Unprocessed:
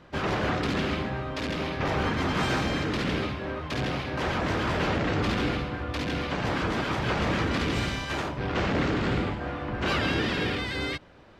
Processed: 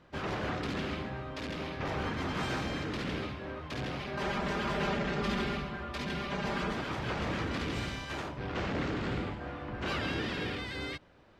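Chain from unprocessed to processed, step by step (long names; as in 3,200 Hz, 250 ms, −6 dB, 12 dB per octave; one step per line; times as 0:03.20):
0:04.00–0:06.73: comb filter 5 ms, depth 86%
level −7.5 dB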